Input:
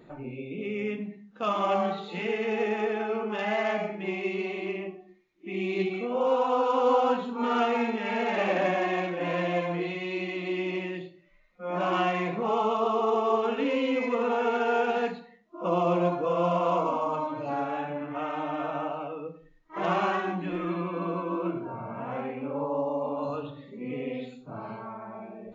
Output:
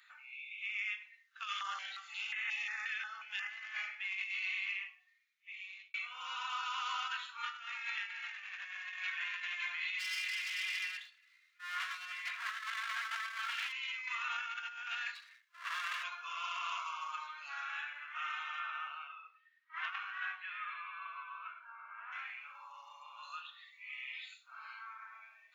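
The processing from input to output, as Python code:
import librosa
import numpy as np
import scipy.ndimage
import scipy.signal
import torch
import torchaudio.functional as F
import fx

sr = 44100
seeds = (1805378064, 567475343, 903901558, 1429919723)

y = fx.filter_held_notch(x, sr, hz=5.6, low_hz=930.0, high_hz=4900.0, at=(1.46, 3.48), fade=0.02)
y = fx.lower_of_two(y, sr, delay_ms=2.9, at=(9.98, 13.71), fade=0.02)
y = fx.lower_of_two(y, sr, delay_ms=1.8, at=(15.14, 16.02), fade=0.02)
y = fx.lowpass(y, sr, hz=fx.line((18.59, 3700.0), (22.11, 1800.0)), slope=12, at=(18.59, 22.11), fade=0.02)
y = fx.edit(y, sr, fx.fade_out_span(start_s=4.81, length_s=1.13), tone=tone)
y = scipy.signal.sosfilt(scipy.signal.butter(6, 1400.0, 'highpass', fs=sr, output='sos'), y)
y = fx.over_compress(y, sr, threshold_db=-40.0, ratio=-0.5)
y = F.gain(torch.from_numpy(y), 1.0).numpy()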